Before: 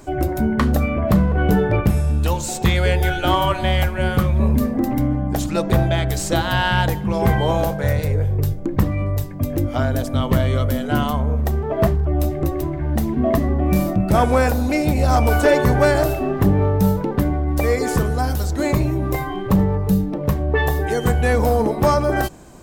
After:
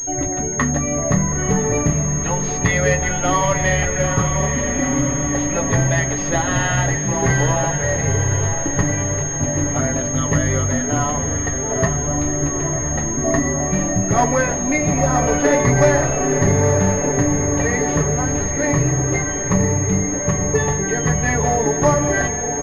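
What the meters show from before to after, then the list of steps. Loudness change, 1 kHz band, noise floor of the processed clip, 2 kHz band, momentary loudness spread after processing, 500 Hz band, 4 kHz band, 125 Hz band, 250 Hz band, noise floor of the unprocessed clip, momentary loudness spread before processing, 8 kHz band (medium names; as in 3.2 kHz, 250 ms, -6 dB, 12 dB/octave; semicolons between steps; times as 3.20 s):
+1.0 dB, 0.0 dB, -23 dBFS, +3.0 dB, 4 LU, +0.5 dB, -5.0 dB, -0.5 dB, -0.5 dB, -27 dBFS, 5 LU, +18.0 dB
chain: peaking EQ 1.9 kHz +12.5 dB 0.21 oct; flange 0.35 Hz, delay 9.1 ms, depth 6.5 ms, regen -40%; comb 7.1 ms, depth 66%; echo that smears into a reverb 932 ms, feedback 62%, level -7 dB; class-D stage that switches slowly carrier 6.5 kHz; trim +1.5 dB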